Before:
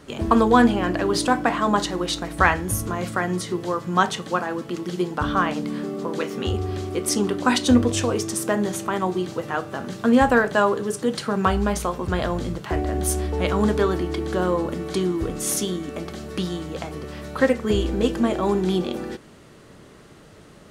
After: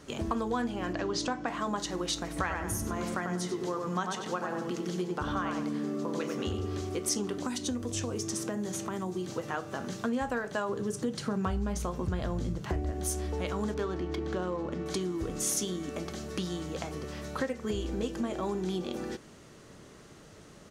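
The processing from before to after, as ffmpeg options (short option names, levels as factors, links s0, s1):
-filter_complex "[0:a]asettb=1/sr,asplit=3[s0][s1][s2];[s0]atrim=end=0.934[s3];[s1]atrim=start=0.93:end=1.48,asetpts=PTS-STARTPTS,afade=t=in:d=0.004:c=qsin,afade=t=out:st=0.546:d=0.004:c=qsin,lowpass=f=7000:w=0.5412,lowpass=f=7000:w=1.3066[s4];[s2]atrim=start=1.476[s5];[s3][s4]acrossfade=d=0.004:c1=hsin:c2=qsin[s6];[s6][s5]acrossfade=d=0.004:c1=qsin:c2=hsin,asplit=3[s7][s8][s9];[s7]afade=t=out:st=2.35:d=0.02[s10];[s8]asplit=2[s11][s12];[s12]adelay=95,lowpass=f=2000:p=1,volume=0.668,asplit=2[s13][s14];[s14]adelay=95,lowpass=f=2000:p=1,volume=0.38,asplit=2[s15][s16];[s16]adelay=95,lowpass=f=2000:p=1,volume=0.38,asplit=2[s17][s18];[s18]adelay=95,lowpass=f=2000:p=1,volume=0.38,asplit=2[s19][s20];[s20]adelay=95,lowpass=f=2000:p=1,volume=0.38[s21];[s11][s13][s15][s17][s19][s21]amix=inputs=6:normalize=0,afade=t=in:st=2.35:d=0.02,afade=t=out:st=6.8:d=0.02[s22];[s9]afade=t=in:st=6.8:d=0.02[s23];[s10][s22][s23]amix=inputs=3:normalize=0,asettb=1/sr,asplit=3[s24][s25][s26];[s24]atrim=end=7.384[s27];[s25]atrim=start=7.38:end=9.3,asetpts=PTS-STARTPTS,afade=t=in:d=0.004:c=qsin,afade=t=out:st=1.916:d=0.004:c=qsin,acrossover=split=350|6200[s28][s29][s30];[s28]acompressor=threshold=0.0562:ratio=4[s31];[s29]acompressor=threshold=0.0251:ratio=4[s32];[s30]acompressor=threshold=0.0126:ratio=4[s33];[s31][s32][s33]amix=inputs=3:normalize=0[s34];[s26]atrim=start=9.296[s35];[s27][s34]acrossfade=d=0.004:c1=hsin:c2=qsin[s36];[s36][s35]acrossfade=d=0.004:c1=qsin:c2=hsin,asettb=1/sr,asplit=3[s37][s38][s39];[s37]atrim=end=10.694[s40];[s38]atrim=start=10.69:end=12.92,asetpts=PTS-STARTPTS,afade=t=in:d=0.004:c=qsin,afade=t=out:st=2.226:d=0.004:c=qsin,lowshelf=f=270:g=10.5[s41];[s39]atrim=start=12.916[s42];[s40][s41]acrossfade=d=0.004:c1=hsin:c2=qsin[s43];[s43][s42]acrossfade=d=0.004:c1=qsin:c2=hsin,asettb=1/sr,asplit=3[s44][s45][s46];[s44]atrim=end=13.744[s47];[s45]atrim=start=13.74:end=14.86,asetpts=PTS-STARTPTS,afade=t=in:d=0.004:c=qsin,afade=t=out:st=1.116:d=0.004:c=qsin,adynamicsmooth=sensitivity=4:basefreq=3100[s48];[s46]atrim=start=14.856[s49];[s47][s48]acrossfade=d=0.004:c1=hsin:c2=qsin[s50];[s50][s49]acrossfade=d=0.004:c1=qsin:c2=hsin,acompressor=threshold=0.0562:ratio=4,equalizer=f=6200:w=2:g=6.5,volume=0.562"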